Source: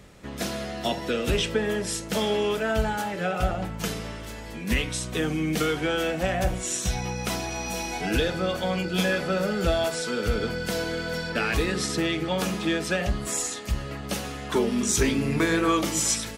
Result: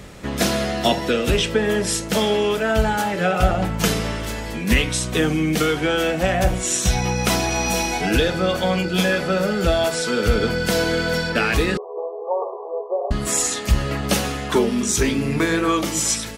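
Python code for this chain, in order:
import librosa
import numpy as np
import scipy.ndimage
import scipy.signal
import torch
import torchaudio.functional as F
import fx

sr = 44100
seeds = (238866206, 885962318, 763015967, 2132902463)

y = fx.rider(x, sr, range_db=4, speed_s=0.5)
y = fx.brickwall_bandpass(y, sr, low_hz=370.0, high_hz=1200.0, at=(11.77, 13.11))
y = F.gain(torch.from_numpy(y), 6.5).numpy()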